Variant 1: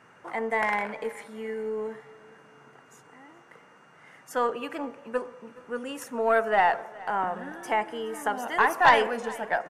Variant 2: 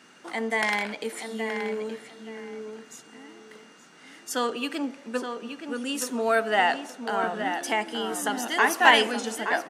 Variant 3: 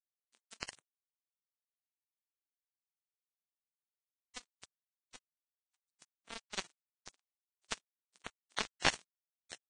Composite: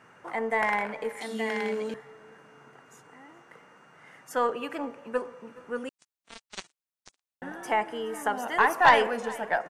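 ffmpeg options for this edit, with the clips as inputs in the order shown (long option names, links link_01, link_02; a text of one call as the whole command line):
ffmpeg -i take0.wav -i take1.wav -i take2.wav -filter_complex "[0:a]asplit=3[link_01][link_02][link_03];[link_01]atrim=end=1.212[link_04];[1:a]atrim=start=1.208:end=1.942[link_05];[link_02]atrim=start=1.938:end=5.892[link_06];[2:a]atrim=start=5.888:end=7.422[link_07];[link_03]atrim=start=7.418[link_08];[link_04][link_05]acrossfade=duration=0.004:curve1=hsin:curve2=hsin[link_09];[link_09][link_06]acrossfade=duration=0.004:curve1=hsin:curve2=hsin[link_10];[link_10][link_07]acrossfade=duration=0.004:curve1=hsin:curve2=hsin[link_11];[link_11][link_08]acrossfade=duration=0.004:curve1=hsin:curve2=hsin" out.wav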